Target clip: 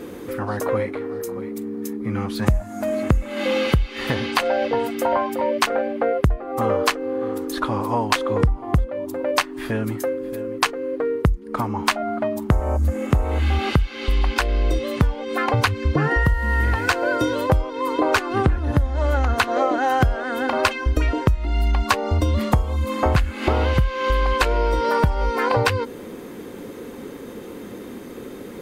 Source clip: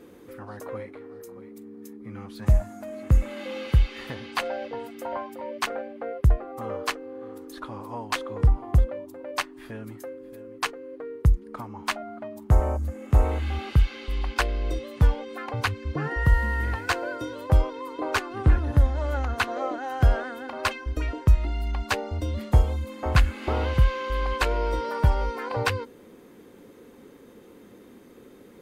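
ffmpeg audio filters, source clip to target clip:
ffmpeg -i in.wav -filter_complex "[0:a]asettb=1/sr,asplit=3[link_01][link_02][link_03];[link_01]atrim=end=21.864[link_04];[link_02]atrim=start=21.86:end=23.04,asetpts=PTS-STARTPTS,afade=type=in:duration=0.004:curve=qsin,afade=type=out:start_time=1.176:duration=0.004:curve=qsin,equalizer=frequency=1100:width=7.2:gain=9[link_05];[link_03]atrim=start=23.036[link_06];[link_04][link_05]acrossfade=duration=0.004:curve1=hsin:curve2=qsin[link_07];[link_07][link_06]acrossfade=duration=0.004:curve1=qsin:curve2=hsin,acompressor=threshold=-29dB:ratio=12,alimiter=level_in=15dB:limit=-1dB:release=50:level=0:latency=1,volume=-1dB" out.wav

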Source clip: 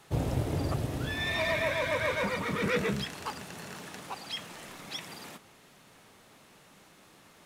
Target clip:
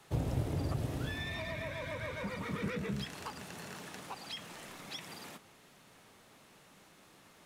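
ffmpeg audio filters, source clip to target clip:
ffmpeg -i in.wav -filter_complex "[0:a]acrossover=split=250[link_01][link_02];[link_02]acompressor=threshold=-36dB:ratio=6[link_03];[link_01][link_03]amix=inputs=2:normalize=0,volume=-3dB" out.wav

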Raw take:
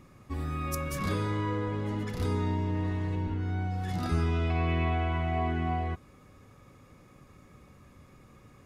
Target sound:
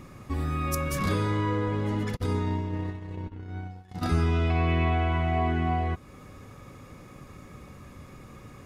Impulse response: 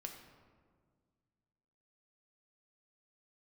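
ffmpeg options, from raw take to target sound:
-filter_complex "[0:a]asplit=3[link_01][link_02][link_03];[link_01]afade=type=out:start_time=2.15:duration=0.02[link_04];[link_02]agate=range=-38dB:threshold=-28dB:ratio=16:detection=peak,afade=type=in:start_time=2.15:duration=0.02,afade=type=out:start_time=4.01:duration=0.02[link_05];[link_03]afade=type=in:start_time=4.01:duration=0.02[link_06];[link_04][link_05][link_06]amix=inputs=3:normalize=0,asplit=2[link_07][link_08];[link_08]acompressor=threshold=-42dB:ratio=6,volume=1dB[link_09];[link_07][link_09]amix=inputs=2:normalize=0,volume=2dB"

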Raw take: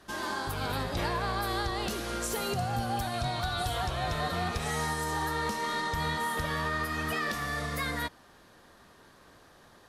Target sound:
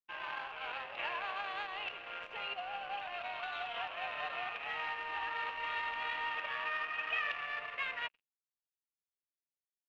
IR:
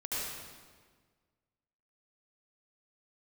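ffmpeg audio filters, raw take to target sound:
-filter_complex "[0:a]highpass=frequency=590:width=0.5412,highpass=frequency=590:width=1.3066,adynamicsmooth=sensitivity=5.5:basefreq=850,asplit=2[link_01][link_02];[1:a]atrim=start_sample=2205,asetrate=88200,aresample=44100,adelay=63[link_03];[link_02][link_03]afir=irnorm=-1:irlink=0,volume=-21.5dB[link_04];[link_01][link_04]amix=inputs=2:normalize=0,aeval=exprs='sgn(val(0))*max(abs(val(0))-0.00237,0)':channel_layout=same,lowpass=frequency=2700:width_type=q:width=7.7,volume=-7dB"

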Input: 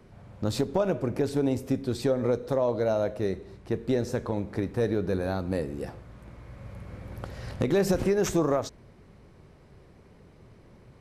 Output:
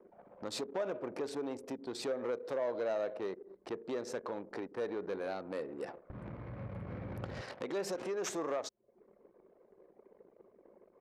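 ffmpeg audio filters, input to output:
ffmpeg -i in.wav -af "acompressor=threshold=-47dB:ratio=2,asoftclip=type=tanh:threshold=-34dB,asetnsamples=nb_out_samples=441:pad=0,asendcmd='6.1 highpass f 110;7.41 highpass f 410',highpass=380,anlmdn=0.000631,lowpass=10000,volume=7.5dB" out.wav

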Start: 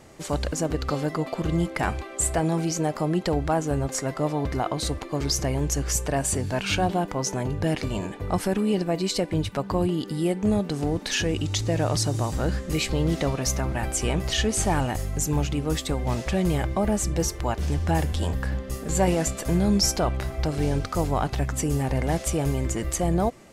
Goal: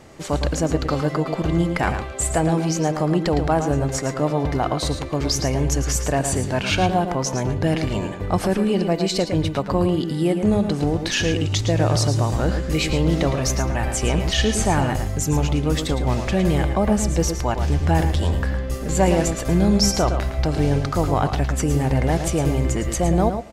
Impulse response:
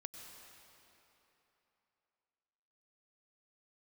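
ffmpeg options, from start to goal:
-filter_complex "[0:a]asplit=2[link_01][link_02];[link_02]adelay=110.8,volume=-8dB,highshelf=frequency=4000:gain=-2.49[link_03];[link_01][link_03]amix=inputs=2:normalize=0,asplit=2[link_04][link_05];[1:a]atrim=start_sample=2205,atrim=end_sample=6615,lowpass=7600[link_06];[link_05][link_06]afir=irnorm=-1:irlink=0,volume=1dB[link_07];[link_04][link_07]amix=inputs=2:normalize=0"

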